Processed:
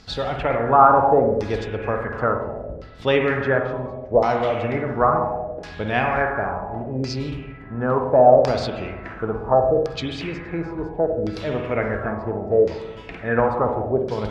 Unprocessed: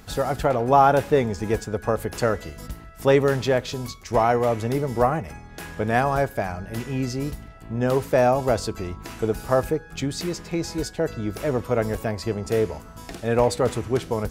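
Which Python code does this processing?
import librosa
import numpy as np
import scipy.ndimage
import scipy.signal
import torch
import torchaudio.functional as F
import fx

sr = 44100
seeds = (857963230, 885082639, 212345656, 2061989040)

y = fx.rev_spring(x, sr, rt60_s=1.4, pass_ms=(47, 60), chirp_ms=70, drr_db=3.0)
y = fx.filter_lfo_lowpass(y, sr, shape='saw_down', hz=0.71, low_hz=510.0, high_hz=5100.0, q=3.6)
y = y * 10.0 ** (-2.5 / 20.0)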